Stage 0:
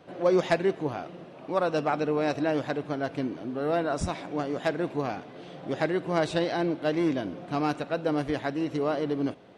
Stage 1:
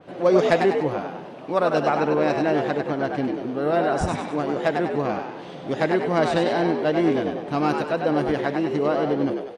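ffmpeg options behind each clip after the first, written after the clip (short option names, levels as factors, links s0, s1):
-filter_complex "[0:a]asplit=7[s0][s1][s2][s3][s4][s5][s6];[s1]adelay=98,afreqshift=68,volume=0.562[s7];[s2]adelay=196,afreqshift=136,volume=0.254[s8];[s3]adelay=294,afreqshift=204,volume=0.114[s9];[s4]adelay=392,afreqshift=272,volume=0.0513[s10];[s5]adelay=490,afreqshift=340,volume=0.0232[s11];[s6]adelay=588,afreqshift=408,volume=0.0104[s12];[s0][s7][s8][s9][s10][s11][s12]amix=inputs=7:normalize=0,adynamicequalizer=threshold=0.00447:dfrequency=3200:dqfactor=0.7:tfrequency=3200:tqfactor=0.7:attack=5:release=100:ratio=0.375:range=2.5:mode=cutabove:tftype=highshelf,volume=1.68"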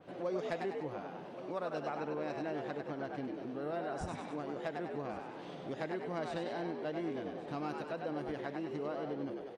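-af "aecho=1:1:1121:0.0944,acompressor=threshold=0.0224:ratio=2,volume=0.355"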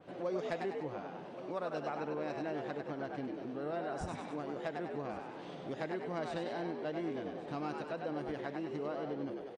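-af "aresample=22050,aresample=44100"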